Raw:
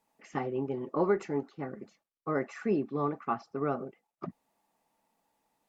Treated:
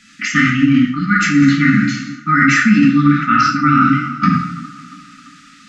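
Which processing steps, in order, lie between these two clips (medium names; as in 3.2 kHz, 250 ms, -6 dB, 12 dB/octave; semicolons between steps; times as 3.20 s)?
low-pass 6.6 kHz 24 dB/octave; bass shelf 310 Hz -9 dB; two-slope reverb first 0.74 s, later 2.2 s, DRR -3 dB; reverse; compression 16:1, threshold -35 dBFS, peak gain reduction 15.5 dB; reverse; brick-wall FIR band-stop 300–1200 Hz; feedback echo behind a band-pass 341 ms, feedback 61%, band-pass 630 Hz, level -19 dB; loudness maximiser +35.5 dB; trim -1 dB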